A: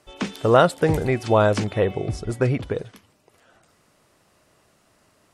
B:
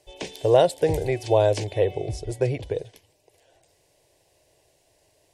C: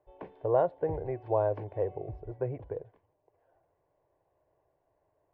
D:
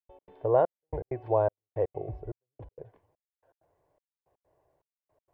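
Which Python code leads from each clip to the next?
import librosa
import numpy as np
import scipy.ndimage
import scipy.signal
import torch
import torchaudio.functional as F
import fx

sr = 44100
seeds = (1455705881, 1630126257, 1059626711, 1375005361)

y1 = fx.fixed_phaser(x, sr, hz=530.0, stages=4)
y2 = fx.ladder_lowpass(y1, sr, hz=1400.0, resonance_pct=50)
y2 = y2 * 10.0 ** (-1.0 / 20.0)
y3 = fx.step_gate(y2, sr, bpm=162, pattern='.x.xxxx..', floor_db=-60.0, edge_ms=4.5)
y3 = y3 * 10.0 ** (2.5 / 20.0)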